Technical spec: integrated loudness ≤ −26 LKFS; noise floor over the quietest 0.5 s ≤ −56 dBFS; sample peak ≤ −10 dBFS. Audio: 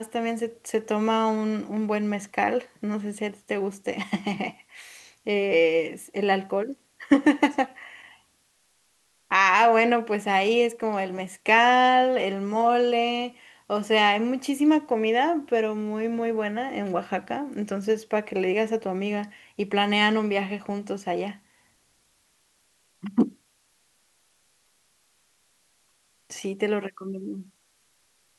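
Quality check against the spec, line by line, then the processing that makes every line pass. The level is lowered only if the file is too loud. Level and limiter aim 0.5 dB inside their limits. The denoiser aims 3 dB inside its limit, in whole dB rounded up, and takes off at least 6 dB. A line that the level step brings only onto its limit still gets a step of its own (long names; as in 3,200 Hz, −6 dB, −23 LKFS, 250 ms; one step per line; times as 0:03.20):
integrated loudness −24.5 LKFS: out of spec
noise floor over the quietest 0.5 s −66 dBFS: in spec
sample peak −4.5 dBFS: out of spec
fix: level −2 dB
brickwall limiter −10.5 dBFS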